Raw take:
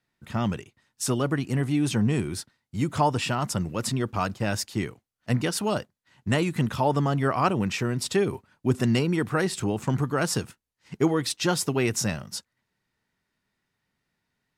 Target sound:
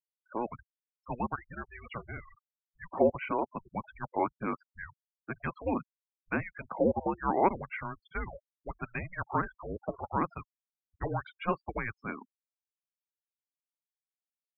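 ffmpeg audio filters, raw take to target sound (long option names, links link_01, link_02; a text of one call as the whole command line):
ffmpeg -i in.wav -filter_complex "[0:a]acrossover=split=400 2400:gain=0.0891 1 0.0891[link_01][link_02][link_03];[link_01][link_02][link_03]amix=inputs=3:normalize=0,afftfilt=real='re*gte(hypot(re,im),0.0178)':imag='im*gte(hypot(re,im),0.0178)':win_size=1024:overlap=0.75,highpass=frequency=520:width_type=q:width=0.5412,highpass=frequency=520:width_type=q:width=1.307,lowpass=frequency=3500:width_type=q:width=0.5176,lowpass=frequency=3500:width_type=q:width=0.7071,lowpass=frequency=3500:width_type=q:width=1.932,afreqshift=-350" out.wav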